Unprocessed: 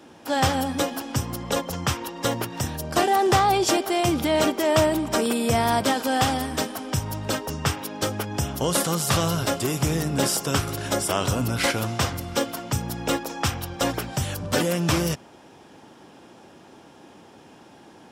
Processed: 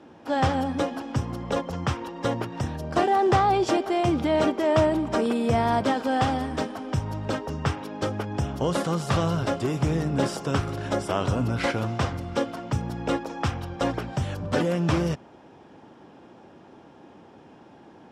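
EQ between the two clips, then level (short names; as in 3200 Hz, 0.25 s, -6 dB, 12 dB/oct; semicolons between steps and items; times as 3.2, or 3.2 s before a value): air absorption 61 m; high shelf 2300 Hz -9 dB; 0.0 dB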